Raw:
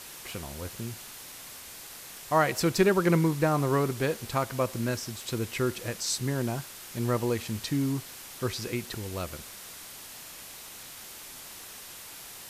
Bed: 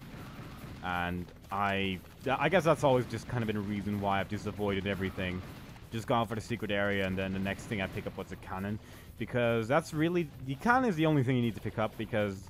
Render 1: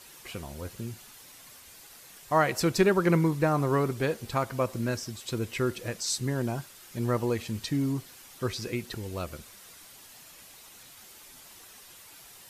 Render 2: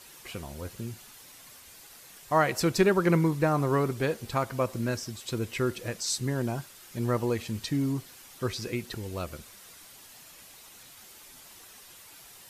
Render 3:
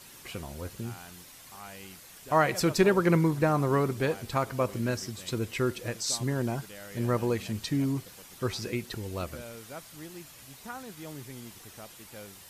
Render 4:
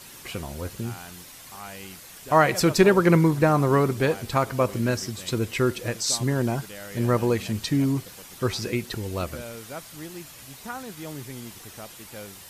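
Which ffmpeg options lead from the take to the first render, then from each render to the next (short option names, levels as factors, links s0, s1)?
-af "afftdn=nr=8:nf=-45"
-af anull
-filter_complex "[1:a]volume=0.168[s0];[0:a][s0]amix=inputs=2:normalize=0"
-af "volume=1.88"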